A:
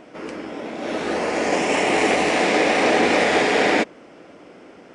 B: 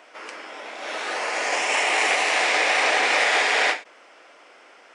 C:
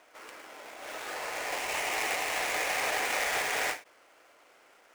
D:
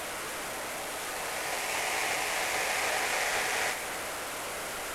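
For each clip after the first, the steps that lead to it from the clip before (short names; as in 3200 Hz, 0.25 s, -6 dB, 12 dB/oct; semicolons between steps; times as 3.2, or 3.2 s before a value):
HPF 930 Hz 12 dB/oct; ending taper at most 200 dB/s; gain +2 dB
switching dead time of 0.086 ms; gain -9 dB
delta modulation 64 kbps, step -30.5 dBFS; reverb RT60 2.7 s, pre-delay 0.205 s, DRR 11.5 dB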